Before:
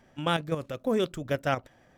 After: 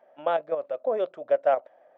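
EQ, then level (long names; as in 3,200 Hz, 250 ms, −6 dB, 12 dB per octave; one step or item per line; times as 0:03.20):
high-pass with resonance 610 Hz, resonance Q 4.9
head-to-tape spacing loss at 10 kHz 41 dB
0.0 dB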